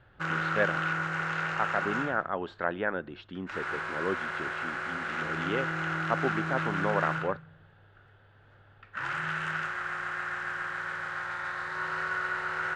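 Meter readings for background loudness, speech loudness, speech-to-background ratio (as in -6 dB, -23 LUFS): -32.5 LUFS, -34.0 LUFS, -1.5 dB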